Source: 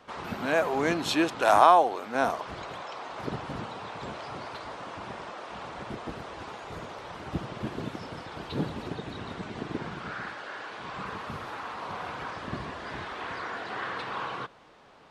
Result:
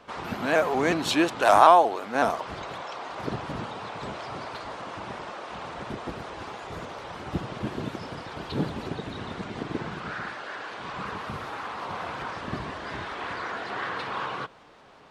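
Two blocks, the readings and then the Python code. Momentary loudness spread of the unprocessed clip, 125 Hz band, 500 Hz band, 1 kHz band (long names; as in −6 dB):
14 LU, +2.5 dB, +2.5 dB, +2.5 dB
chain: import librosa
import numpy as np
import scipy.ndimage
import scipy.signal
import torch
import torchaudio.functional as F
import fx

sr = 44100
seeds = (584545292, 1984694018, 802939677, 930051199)

y = fx.vibrato_shape(x, sr, shape='saw_up', rate_hz=5.4, depth_cents=100.0)
y = y * 10.0 ** (2.5 / 20.0)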